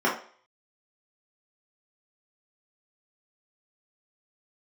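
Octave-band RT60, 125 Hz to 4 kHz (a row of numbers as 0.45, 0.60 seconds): 0.30, 0.40, 0.45, 0.50, 0.45, 0.45 seconds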